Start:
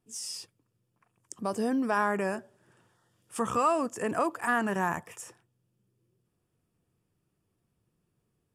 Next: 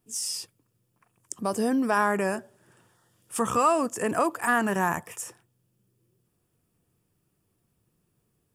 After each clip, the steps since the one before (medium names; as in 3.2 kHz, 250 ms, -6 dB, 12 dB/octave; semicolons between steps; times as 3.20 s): treble shelf 9.3 kHz +10 dB; trim +3.5 dB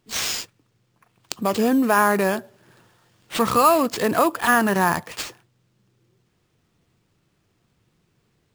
sample-rate reducer 12 kHz, jitter 0%; trim +6 dB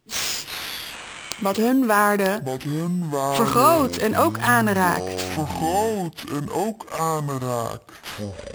ever faster or slower copies 288 ms, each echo -7 st, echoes 2, each echo -6 dB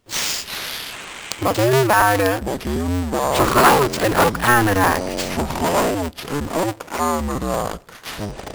cycle switcher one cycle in 2, inverted; trim +3 dB